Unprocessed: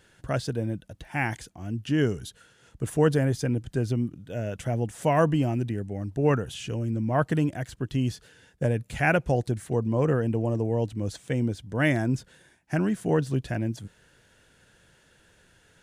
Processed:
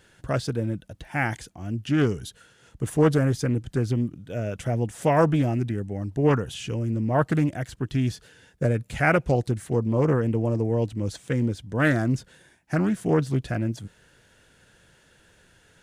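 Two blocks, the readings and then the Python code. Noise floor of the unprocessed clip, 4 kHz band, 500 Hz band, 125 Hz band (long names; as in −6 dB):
−61 dBFS, +1.0 dB, +1.5 dB, +2.0 dB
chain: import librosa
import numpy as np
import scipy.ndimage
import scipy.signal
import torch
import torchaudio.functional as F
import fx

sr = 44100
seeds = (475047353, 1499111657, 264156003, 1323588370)

y = fx.doppler_dist(x, sr, depth_ms=0.24)
y = F.gain(torch.from_numpy(y), 2.0).numpy()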